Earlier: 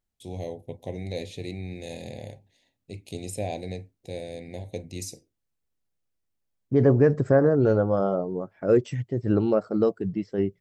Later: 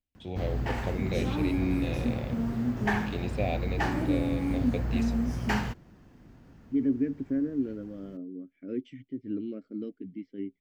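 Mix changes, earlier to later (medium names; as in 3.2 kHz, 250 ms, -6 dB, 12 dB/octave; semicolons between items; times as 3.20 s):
first voice: add resonant low-pass 2.8 kHz, resonance Q 1.9; second voice: add vowel filter i; background: unmuted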